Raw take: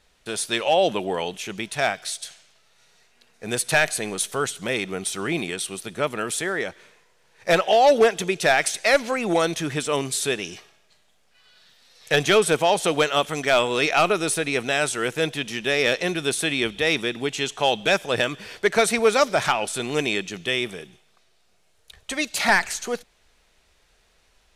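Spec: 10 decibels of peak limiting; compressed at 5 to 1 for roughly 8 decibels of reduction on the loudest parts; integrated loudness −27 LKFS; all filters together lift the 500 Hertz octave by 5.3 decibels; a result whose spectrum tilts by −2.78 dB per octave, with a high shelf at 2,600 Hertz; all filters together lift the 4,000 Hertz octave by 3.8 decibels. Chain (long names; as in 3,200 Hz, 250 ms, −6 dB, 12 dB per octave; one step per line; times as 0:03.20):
parametric band 500 Hz +6.5 dB
high-shelf EQ 2,600 Hz −3.5 dB
parametric band 4,000 Hz +7.5 dB
downward compressor 5 to 1, threshold −16 dBFS
level +0.5 dB
brickwall limiter −16.5 dBFS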